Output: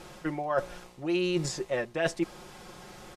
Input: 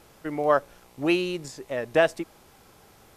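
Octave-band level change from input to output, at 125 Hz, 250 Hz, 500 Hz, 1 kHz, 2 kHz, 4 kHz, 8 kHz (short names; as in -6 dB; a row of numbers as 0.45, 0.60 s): +1.5, -2.5, -6.0, -7.0, -5.5, -2.5, +4.0 dB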